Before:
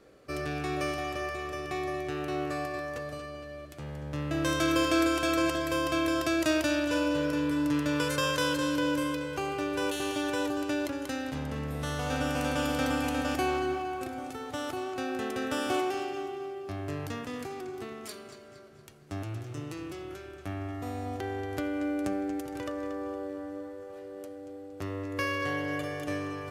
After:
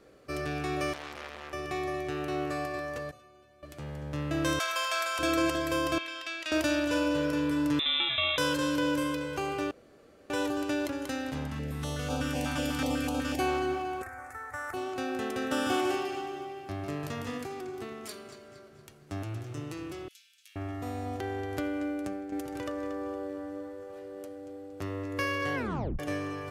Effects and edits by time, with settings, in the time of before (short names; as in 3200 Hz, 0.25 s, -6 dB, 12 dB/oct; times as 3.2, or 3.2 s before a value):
0.93–1.53 core saturation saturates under 3000 Hz
3.11–3.63 metallic resonator 110 Hz, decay 0.41 s, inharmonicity 0.03
4.59–5.19 inverse Chebyshev high-pass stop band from 270 Hz, stop band 50 dB
5.98–6.52 band-pass 2800 Hz, Q 1.4
7.79–8.38 inverted band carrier 3800 Hz
9.71–10.3 room tone
11.47–13.4 stepped notch 8.1 Hz 480–1900 Hz
14.02–14.74 EQ curve 100 Hz 0 dB, 160 Hz -26 dB, 1900 Hz +8 dB, 3100 Hz -24 dB, 7700 Hz -3 dB
15.36–17.38 echo 0.149 s -5 dB
20.08–20.56 inverse Chebyshev high-pass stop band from 510 Hz, stop band 80 dB
21.66–22.32 fade out, to -8.5 dB
25.55 tape stop 0.44 s